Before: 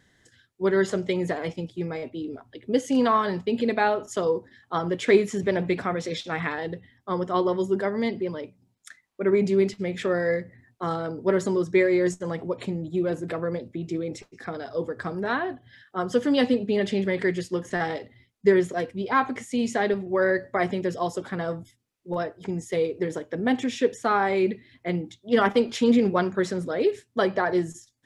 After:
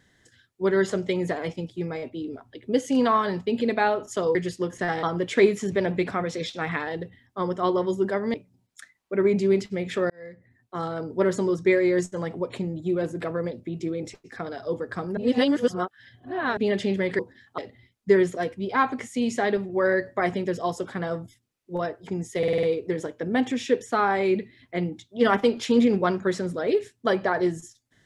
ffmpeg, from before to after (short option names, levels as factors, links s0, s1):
-filter_complex "[0:a]asplit=14[s0][s1][s2][s3][s4][s5][s6][s7][s8][s9][s10][s11][s12][s13];[s0]atrim=end=4.352[s14];[s1]atrim=start=17.268:end=17.952[s15];[s2]atrim=start=4.738:end=8.052[s16];[s3]atrim=start=8.418:end=10.18,asetpts=PTS-STARTPTS,afade=t=out:st=1.758:d=0.004:c=hsin[s17];[s4]atrim=start=10.18:end=15.252,asetpts=PTS-STARTPTS,afade=t=in:d=0.95[s18];[s5]atrim=start=15.248:end=16.652,asetpts=PTS-STARTPTS,areverse[s19];[s6]atrim=start=16.648:end=17.272[s20];[s7]atrim=start=4.348:end=4.742[s21];[s8]atrim=start=17.948:end=22.802[s22];[s9]atrim=start=22.748:end=22.802[s23];[s10]atrim=start=22.748:end=22.802[s24];[s11]atrim=start=22.748:end=22.802[s25];[s12]atrim=start=22.748:end=22.802[s26];[s13]atrim=start=22.748[s27];[s14][s15]acrossfade=d=0.004:c1=hsin:c2=hsin[s28];[s28][s16]acrossfade=d=0.004:c1=hsin:c2=hsin[s29];[s17][s18]concat=n=2:v=0:a=1[s30];[s29][s30]acrossfade=d=0.004:c1=hsin:c2=hsin[s31];[s31][s19]acrossfade=d=0.004:c1=hsin:c2=hsin[s32];[s32][s20]acrossfade=d=0.004:c1=hsin:c2=hsin[s33];[s33][s21]acrossfade=d=0.004:c1=hsin:c2=hsin[s34];[s34][s22]acrossfade=d=0.004:c1=hsin:c2=hsin[s35];[s35][s23]acrossfade=d=0.004:c1=hsin:c2=hsin[s36];[s36][s24]acrossfade=d=0.004:c1=hsin:c2=hsin[s37];[s37][s25]acrossfade=d=0.004:c1=hsin:c2=hsin[s38];[s38][s26]acrossfade=d=0.004:c1=hsin:c2=hsin[s39];[s39][s27]acrossfade=d=0.004:c1=hsin:c2=hsin"